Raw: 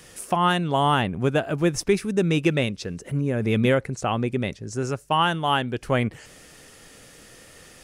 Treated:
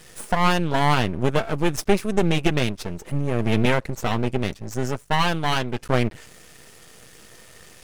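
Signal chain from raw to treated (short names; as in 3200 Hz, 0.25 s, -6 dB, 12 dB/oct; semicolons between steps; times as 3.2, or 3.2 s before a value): notch comb 280 Hz; half-wave rectifier; gain +5.5 dB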